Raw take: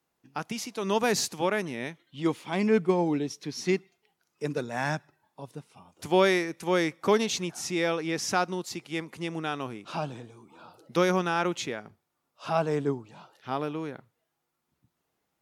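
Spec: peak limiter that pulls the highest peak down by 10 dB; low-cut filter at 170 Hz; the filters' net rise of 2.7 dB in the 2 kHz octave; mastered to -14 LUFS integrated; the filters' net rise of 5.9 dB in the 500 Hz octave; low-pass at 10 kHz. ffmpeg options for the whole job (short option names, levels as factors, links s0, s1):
-af "highpass=170,lowpass=10000,equalizer=f=500:t=o:g=7.5,equalizer=f=2000:t=o:g=3,volume=5.31,alimiter=limit=0.794:level=0:latency=1"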